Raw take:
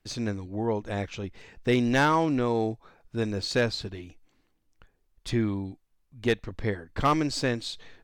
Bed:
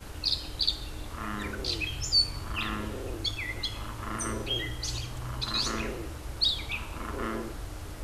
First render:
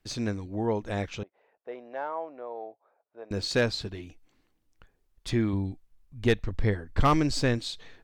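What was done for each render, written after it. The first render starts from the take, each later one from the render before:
0:01.23–0:03.31: four-pole ladder band-pass 720 Hz, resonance 50%
0:05.53–0:07.59: low-shelf EQ 99 Hz +12 dB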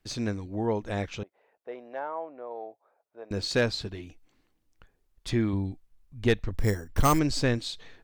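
0:01.99–0:02.51: high-frequency loss of the air 230 metres
0:06.55–0:07.19: bad sample-rate conversion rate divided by 6×, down none, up hold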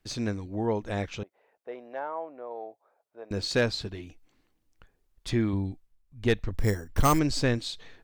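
0:05.71–0:06.35: duck −9 dB, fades 0.32 s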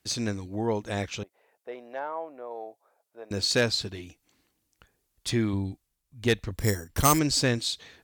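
high-pass filter 53 Hz
parametric band 12,000 Hz +10.5 dB 2.4 octaves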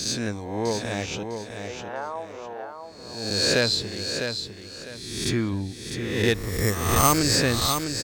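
peak hold with a rise ahead of every peak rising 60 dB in 0.98 s
on a send: repeating echo 653 ms, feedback 28%, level −7 dB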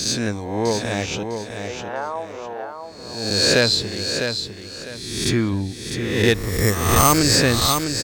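level +5 dB
brickwall limiter −1 dBFS, peak gain reduction 2.5 dB

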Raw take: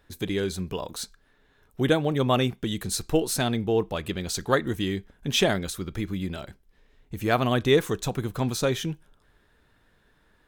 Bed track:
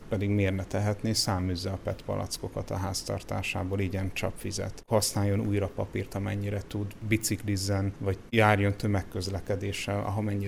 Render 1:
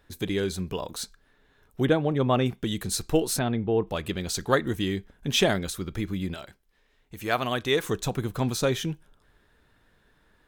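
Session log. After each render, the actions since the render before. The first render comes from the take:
0:01.85–0:02.46: low-pass filter 2,000 Hz 6 dB per octave
0:03.39–0:03.87: high-frequency loss of the air 370 metres
0:06.34–0:07.84: low-shelf EQ 450 Hz −9.5 dB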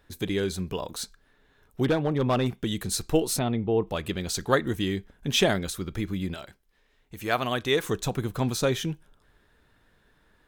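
0:01.83–0:02.52: hard clipping −18 dBFS
0:03.23–0:03.89: notch filter 1,600 Hz, Q 5.8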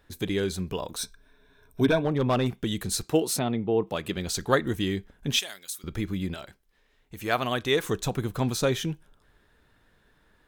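0:00.98–0:02.05: EQ curve with evenly spaced ripples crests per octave 1.6, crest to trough 12 dB
0:03.03–0:04.17: high-pass filter 120 Hz
0:05.39–0:05.84: first difference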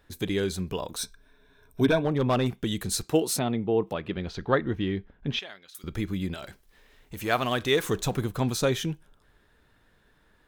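0:03.93–0:05.75: high-frequency loss of the air 280 metres
0:06.42–0:08.26: mu-law and A-law mismatch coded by mu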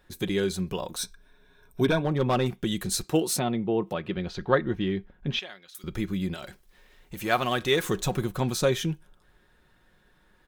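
comb filter 5.5 ms, depth 36%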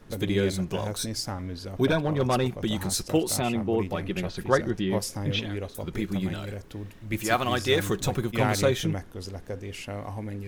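mix in bed track −5 dB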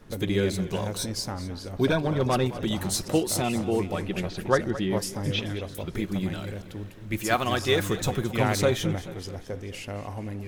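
feedback echo with a swinging delay time 217 ms, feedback 55%, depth 97 cents, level −15 dB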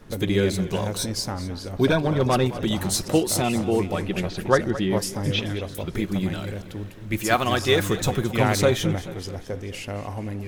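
level +3.5 dB

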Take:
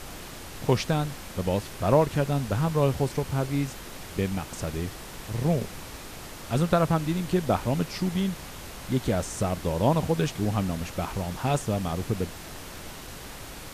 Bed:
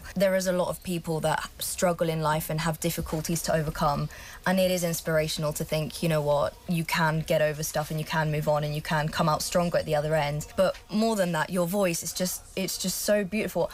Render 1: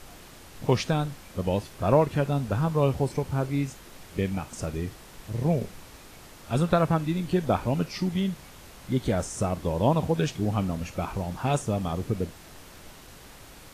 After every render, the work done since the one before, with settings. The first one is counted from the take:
noise reduction from a noise print 7 dB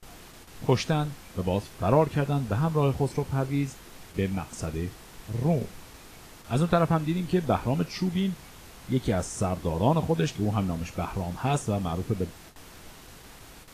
noise gate with hold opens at −37 dBFS
notch filter 570 Hz, Q 14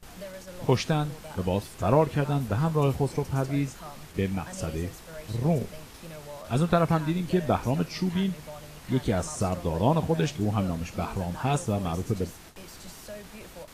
mix in bed −18 dB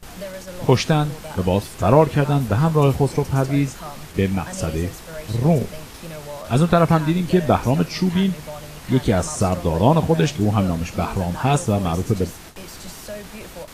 level +8 dB
brickwall limiter −1 dBFS, peak gain reduction 2 dB

